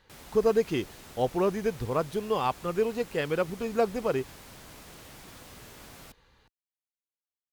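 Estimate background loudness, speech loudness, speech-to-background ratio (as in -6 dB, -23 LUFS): -47.5 LUFS, -29.0 LUFS, 18.5 dB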